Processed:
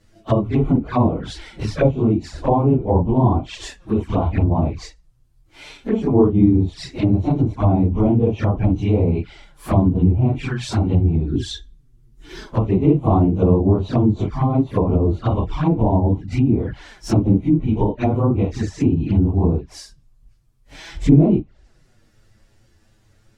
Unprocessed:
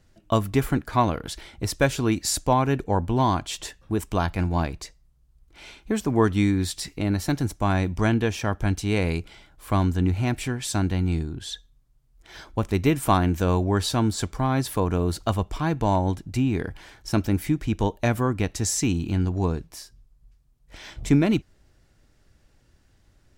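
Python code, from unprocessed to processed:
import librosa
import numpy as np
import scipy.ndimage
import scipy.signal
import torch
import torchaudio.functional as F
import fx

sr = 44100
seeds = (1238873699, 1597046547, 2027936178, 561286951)

y = fx.phase_scramble(x, sr, seeds[0], window_ms=100)
y = fx.env_lowpass_down(y, sr, base_hz=760.0, full_db=-19.0)
y = fx.low_shelf_res(y, sr, hz=470.0, db=7.0, q=3.0, at=(11.32, 12.47))
y = fx.env_flanger(y, sr, rest_ms=10.0, full_db=-22.5)
y = y * librosa.db_to_amplitude(7.5)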